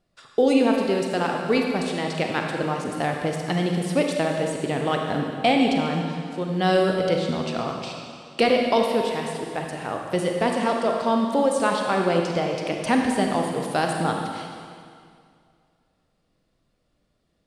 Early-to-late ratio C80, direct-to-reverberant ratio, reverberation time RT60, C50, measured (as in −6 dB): 3.5 dB, 1.0 dB, 2.2 s, 2.0 dB